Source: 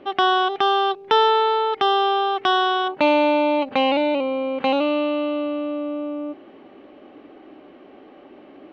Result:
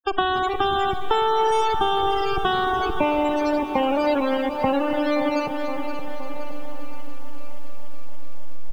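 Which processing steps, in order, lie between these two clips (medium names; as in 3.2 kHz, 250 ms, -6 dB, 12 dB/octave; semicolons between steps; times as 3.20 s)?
send-on-delta sampling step -18.5 dBFS; bass shelf 66 Hz -2 dB; feedback delay 519 ms, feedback 46%, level -13 dB; Schroeder reverb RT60 0.65 s, combs from 28 ms, DRR 15 dB; loudest bins only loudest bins 32; compression 4:1, threshold -29 dBFS, peak gain reduction 15 dB; bit-crushed delay 287 ms, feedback 80%, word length 9-bit, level -14 dB; trim +9 dB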